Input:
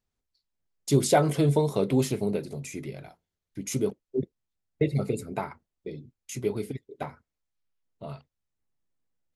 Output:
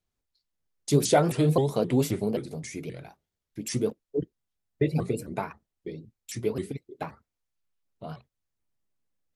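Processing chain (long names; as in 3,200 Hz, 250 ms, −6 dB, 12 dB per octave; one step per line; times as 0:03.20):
pitch modulation by a square or saw wave saw up 3.8 Hz, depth 250 cents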